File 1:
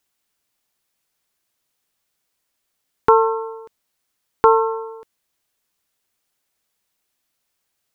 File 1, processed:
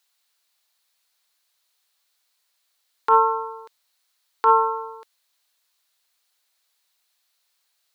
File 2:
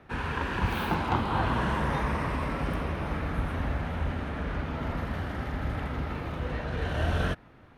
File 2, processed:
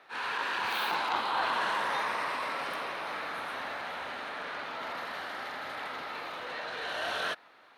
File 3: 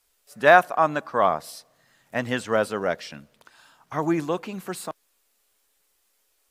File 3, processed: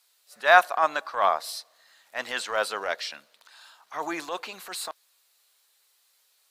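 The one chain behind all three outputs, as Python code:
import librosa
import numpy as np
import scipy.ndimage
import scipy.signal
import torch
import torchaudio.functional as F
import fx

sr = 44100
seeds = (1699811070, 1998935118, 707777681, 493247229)

y = scipy.signal.sosfilt(scipy.signal.butter(2, 720.0, 'highpass', fs=sr, output='sos'), x)
y = fx.peak_eq(y, sr, hz=4100.0, db=7.5, octaves=0.44)
y = fx.transient(y, sr, attack_db=-8, sustain_db=0)
y = y * 10.0 ** (2.5 / 20.0)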